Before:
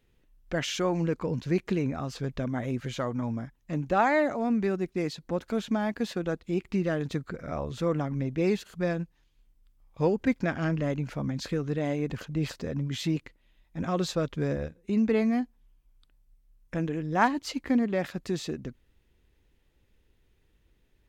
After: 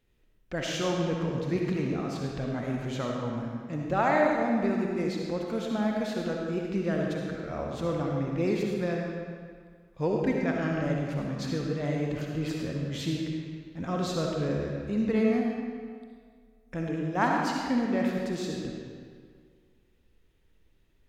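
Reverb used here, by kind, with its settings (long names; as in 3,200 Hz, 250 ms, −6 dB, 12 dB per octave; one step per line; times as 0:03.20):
comb and all-pass reverb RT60 1.9 s, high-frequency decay 0.8×, pre-delay 25 ms, DRR −1 dB
level −3.5 dB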